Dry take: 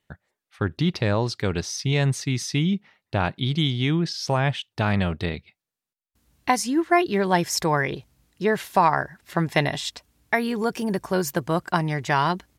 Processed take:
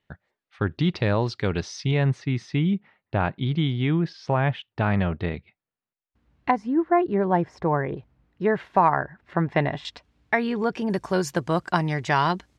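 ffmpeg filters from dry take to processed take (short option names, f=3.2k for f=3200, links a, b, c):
-af "asetnsamples=n=441:p=0,asendcmd='1.91 lowpass f 2200;6.51 lowpass f 1100;7.97 lowpass f 1800;9.85 lowpass f 3400;10.9 lowpass f 7000',lowpass=4k"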